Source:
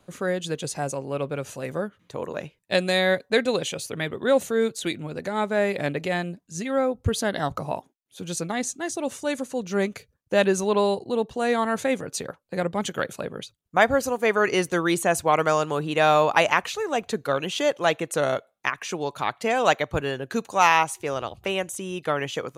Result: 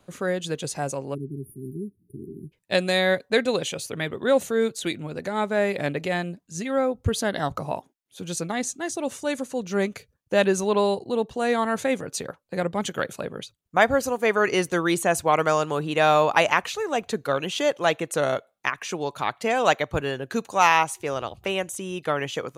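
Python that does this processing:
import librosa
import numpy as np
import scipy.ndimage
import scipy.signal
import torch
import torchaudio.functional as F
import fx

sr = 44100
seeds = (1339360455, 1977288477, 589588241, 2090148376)

y = fx.spec_erase(x, sr, start_s=1.14, length_s=1.38, low_hz=410.0, high_hz=9300.0)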